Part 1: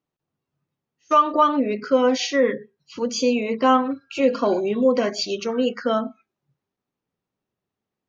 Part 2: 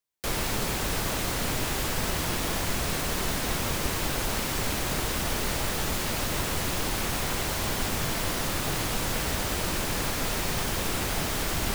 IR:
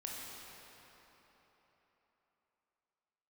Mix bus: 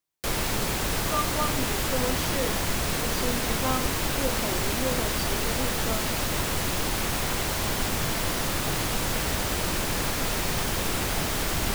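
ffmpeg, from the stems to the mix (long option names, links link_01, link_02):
-filter_complex "[0:a]volume=-13dB[link_01];[1:a]volume=1.5dB[link_02];[link_01][link_02]amix=inputs=2:normalize=0"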